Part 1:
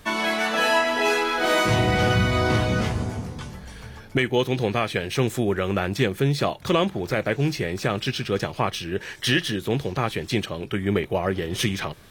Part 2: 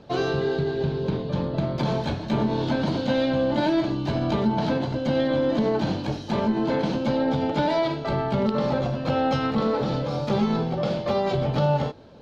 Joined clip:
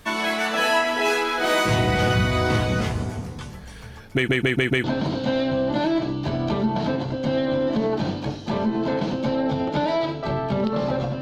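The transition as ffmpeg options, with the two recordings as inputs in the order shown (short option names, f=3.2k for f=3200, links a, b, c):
-filter_complex "[0:a]apad=whole_dur=11.21,atrim=end=11.21,asplit=5[a][b][c][d][e];[a]atrim=end=4.282[f];[b]atrim=start=4.138:end=4.282[g];[c]atrim=start=4.138:end=4.282[h];[d]atrim=start=4.138:end=4.282[i];[e]atrim=start=4.138:end=4.282[j];[1:a]atrim=start=2.658:end=9.03[k];[f][g]acrossfade=d=0.004:c1=hsin:c2=hsin[l];[l][h]acrossfade=d=0.004:c1=hsin:c2=hsin[m];[m][i]acrossfade=d=0.004:c1=hsin:c2=hsin[n];[n][j]acrossfade=d=0.004:c1=hsin:c2=hsin[o];[o][k]acrossfade=d=0.004:c1=hsin:c2=hsin"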